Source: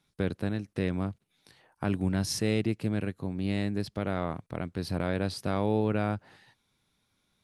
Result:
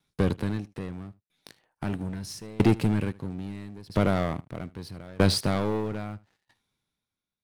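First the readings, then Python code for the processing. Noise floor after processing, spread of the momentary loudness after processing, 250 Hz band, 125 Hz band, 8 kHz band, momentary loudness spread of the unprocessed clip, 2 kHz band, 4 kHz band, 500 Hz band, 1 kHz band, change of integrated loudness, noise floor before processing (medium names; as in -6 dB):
under -85 dBFS, 17 LU, +2.0 dB, +2.5 dB, +0.5 dB, 8 LU, +1.0 dB, +4.5 dB, +1.5 dB, +2.0 dB, +3.0 dB, -75 dBFS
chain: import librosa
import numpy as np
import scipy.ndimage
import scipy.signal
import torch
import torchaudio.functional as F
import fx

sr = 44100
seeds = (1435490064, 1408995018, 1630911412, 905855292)

y = fx.leveller(x, sr, passes=3)
y = y + 10.0 ** (-20.0 / 20.0) * np.pad(y, (int(77 * sr / 1000.0), 0))[:len(y)]
y = fx.tremolo_decay(y, sr, direction='decaying', hz=0.77, depth_db=27)
y = y * librosa.db_to_amplitude(4.5)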